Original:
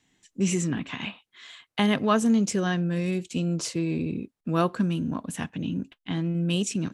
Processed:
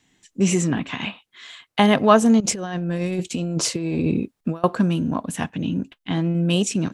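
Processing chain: dynamic bell 720 Hz, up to +7 dB, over -41 dBFS, Q 1.2; 2.40–4.64 s: compressor with a negative ratio -28 dBFS, ratio -0.5; trim +5 dB

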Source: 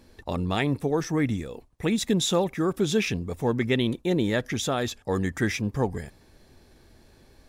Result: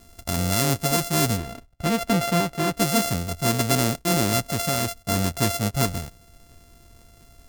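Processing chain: sorted samples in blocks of 64 samples; tone controls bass +5 dB, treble +11 dB, from 1.36 s treble +1 dB, from 2.77 s treble +9 dB

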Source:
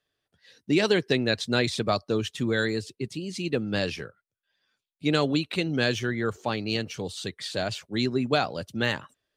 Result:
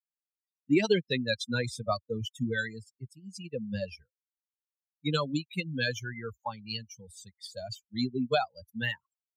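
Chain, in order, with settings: expander on every frequency bin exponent 3; 1.44–2.23 s: peaking EQ 3.1 kHz -7 dB 1.2 oct; trim +2 dB

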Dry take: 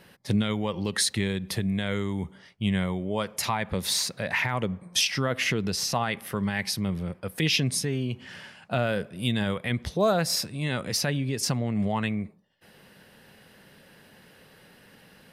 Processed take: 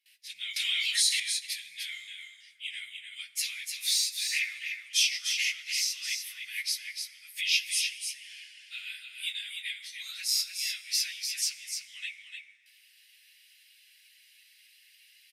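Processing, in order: phase randomisation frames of 50 ms; elliptic high-pass 2.2 kHz, stop band 60 dB; gate with hold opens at -51 dBFS; on a send: delay 299 ms -6 dB; on the sum: plate-style reverb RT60 3.8 s, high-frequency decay 0.4×, DRR 13 dB; 0.56–1.20 s: level flattener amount 70%

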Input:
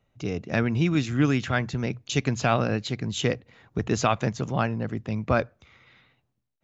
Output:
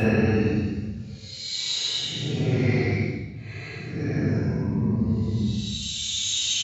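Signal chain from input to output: Paulstretch 15×, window 0.05 s, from 2.75 s; two-slope reverb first 0.68 s, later 2.5 s, from -25 dB, DRR -3 dB; resampled via 32 kHz

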